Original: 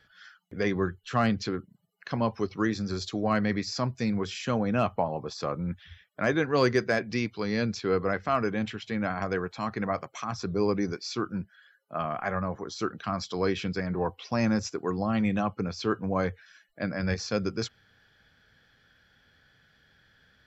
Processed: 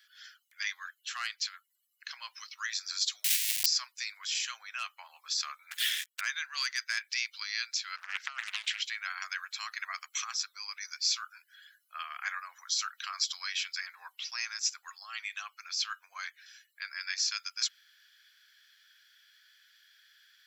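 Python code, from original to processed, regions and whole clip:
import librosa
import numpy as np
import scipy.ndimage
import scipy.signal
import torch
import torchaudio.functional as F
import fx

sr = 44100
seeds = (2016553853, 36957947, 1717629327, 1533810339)

y = fx.chain(x, sr, fx.schmitt(flips_db=-35.5),
    fx.steep_highpass(hz=2000.0, slope=36), at=(3.24, 3.66))
y = fx.chain(y, sr, fx.highpass(hz=89.0, slope=6),
    fx.leveller(passes=5), at=(5.71, 6.21))
y = fx.chain(y, sr, fx.high_shelf(hz=5200.0, db=-4.0),
    fx.over_compress(threshold_db=-30.0, ratio=-0.5),
    fx.doppler_dist(depth_ms=0.93), at=(7.96, 8.84))
y = fx.high_shelf(y, sr, hz=6300.0, db=11.0)
y = fx.rider(y, sr, range_db=3, speed_s=0.5)
y = scipy.signal.sosfilt(scipy.signal.bessel(6, 2300.0, 'highpass', norm='mag', fs=sr, output='sos'), y)
y = F.gain(torch.from_numpy(y), 4.0).numpy()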